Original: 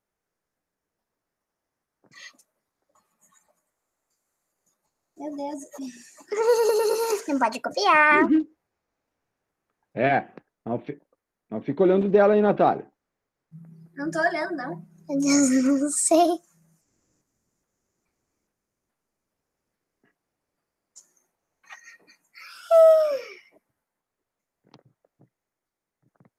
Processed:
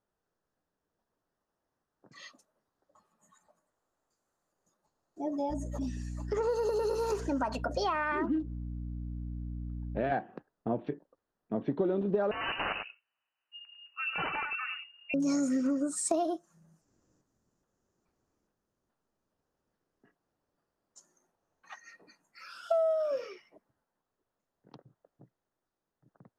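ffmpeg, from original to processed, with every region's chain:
ffmpeg -i in.wav -filter_complex "[0:a]asettb=1/sr,asplit=3[link_01][link_02][link_03];[link_01]atrim=end=5.504[link_04];[link_02]atrim=start=5.5:end=10.12,asetpts=PTS-STARTPTS,afade=type=in:duration=0.004:curve=qsin,afade=type=out:start_time=4.616:duration=0.004:curve=qsin,aeval=exprs='val(0)+0.0141*(sin(2*PI*60*n/s)+sin(2*PI*2*60*n/s)/2+sin(2*PI*3*60*n/s)/3+sin(2*PI*4*60*n/s)/4+sin(2*PI*5*60*n/s)/5)':channel_layout=same,acompressor=threshold=-31dB:ratio=1.5:attack=3.2:release=140:knee=1:detection=peak[link_05];[link_03]atrim=start=10.116[link_06];[link_04][link_05]acrossfade=duration=0.004:curve1=hsin:curve2=qsin[link_07];[link_07][link_06]acrossfade=duration=0.004:curve1=qsin:curve2=hsin,asettb=1/sr,asplit=3[link_08][link_09][link_10];[link_08]atrim=end=12.314[link_11];[link_09]atrim=start=12.31:end=15.14,asetpts=PTS-STARTPTS,afade=type=in:duration=0.004:curve=qsin,afade=type=out:start_time=2.826:duration=0.004:curve=qsin,aeval=exprs='(mod(8.91*val(0)+1,2)-1)/8.91':channel_layout=same,aecho=1:1:100:0.335,atrim=end_sample=124803,lowpass=frequency=2600:width_type=q:width=0.5098,lowpass=frequency=2600:width_type=q:width=0.6013,lowpass=frequency=2600:width_type=q:width=0.9,lowpass=frequency=2600:width_type=q:width=2.563,afreqshift=-3000[link_12];[link_10]atrim=start=15.136[link_13];[link_11][link_12]acrossfade=duration=0.004:curve1=hsin:curve2=qsin[link_14];[link_14][link_13]acrossfade=duration=0.004:curve1=qsin:curve2=hsin,aemphasis=mode=reproduction:type=50fm,acompressor=threshold=-27dB:ratio=6,equalizer=frequency=2200:width=3.9:gain=-10.5" out.wav

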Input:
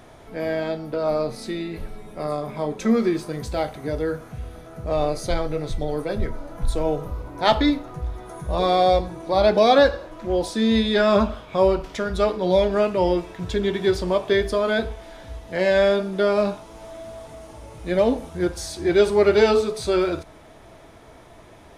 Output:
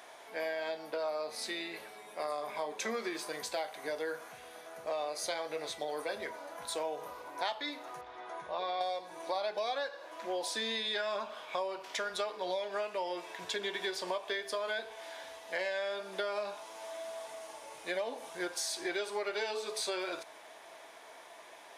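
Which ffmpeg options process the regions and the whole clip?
ffmpeg -i in.wav -filter_complex "[0:a]asettb=1/sr,asplit=3[link_01][link_02][link_03];[link_01]atrim=end=8.014[link_04];[link_02]atrim=start=8.01:end=8.81,asetpts=PTS-STARTPTS,afade=type=in:duration=0.004:curve=qsin,afade=type=out:start_time=0.796:duration=0.004:curve=qsin,lowpass=3800,acompressor=threshold=-24dB:ratio=3:attack=3.2:release=140:knee=1:detection=peak[link_05];[link_03]atrim=start=8.806[link_06];[link_04][link_05]acrossfade=duration=0.004:curve1=hsin:curve2=qsin[link_07];[link_07][link_06]acrossfade=duration=0.004:curve1=qsin:curve2=hsin,highpass=770,bandreject=frequency=1300:width=9.8,acompressor=threshold=-32dB:ratio=12" out.wav

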